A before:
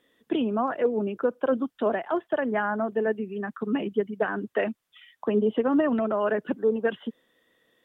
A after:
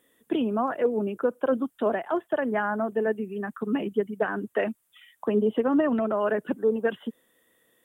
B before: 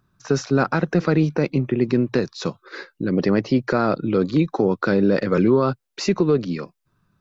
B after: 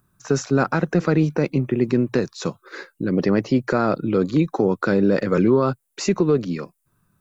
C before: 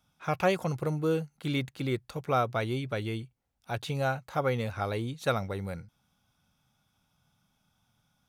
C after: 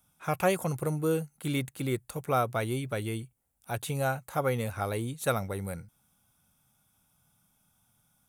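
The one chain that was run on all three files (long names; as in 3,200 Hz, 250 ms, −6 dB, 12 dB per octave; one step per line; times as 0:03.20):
high shelf with overshoot 6,800 Hz +11 dB, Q 1.5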